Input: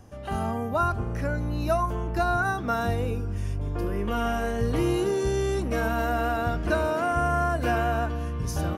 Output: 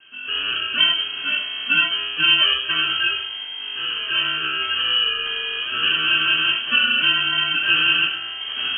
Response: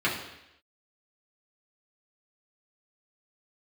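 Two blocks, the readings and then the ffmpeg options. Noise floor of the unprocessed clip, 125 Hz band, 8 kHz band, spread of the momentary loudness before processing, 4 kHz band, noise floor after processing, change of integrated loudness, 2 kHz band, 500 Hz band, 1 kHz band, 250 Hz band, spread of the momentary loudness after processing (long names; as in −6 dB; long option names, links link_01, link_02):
−31 dBFS, −17.0 dB, below −40 dB, 6 LU, +27.5 dB, −31 dBFS, +8.5 dB, +13.5 dB, −15.0 dB, −3.5 dB, −10.0 dB, 9 LU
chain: -filter_complex "[0:a]lowshelf=frequency=390:width_type=q:width=3:gain=-6.5,acrusher=samples=36:mix=1:aa=0.000001[link_01];[1:a]atrim=start_sample=2205,afade=type=out:start_time=0.18:duration=0.01,atrim=end_sample=8379[link_02];[link_01][link_02]afir=irnorm=-1:irlink=0,lowpass=frequency=2800:width_type=q:width=0.5098,lowpass=frequency=2800:width_type=q:width=0.6013,lowpass=frequency=2800:width_type=q:width=0.9,lowpass=frequency=2800:width_type=q:width=2.563,afreqshift=-3300,volume=-5dB"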